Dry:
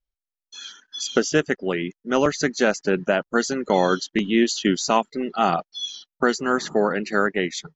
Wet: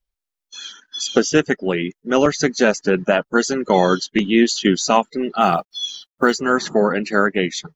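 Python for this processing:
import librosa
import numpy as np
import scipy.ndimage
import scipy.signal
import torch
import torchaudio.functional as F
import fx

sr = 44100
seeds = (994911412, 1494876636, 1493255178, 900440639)

y = fx.spec_quant(x, sr, step_db=15)
y = fx.quant_companded(y, sr, bits=8, at=(5.4, 6.38), fade=0.02)
y = y * librosa.db_to_amplitude(4.5)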